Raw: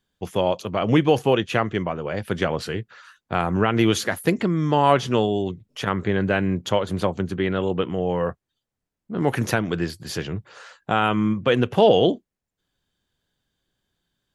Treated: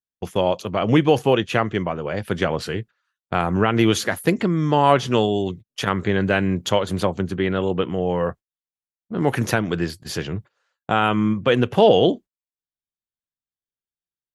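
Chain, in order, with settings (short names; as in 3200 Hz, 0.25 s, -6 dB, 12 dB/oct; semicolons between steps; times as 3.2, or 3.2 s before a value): 5.12–7.03 high shelf 2900 Hz +5 dB; gate -36 dBFS, range -29 dB; gain +1.5 dB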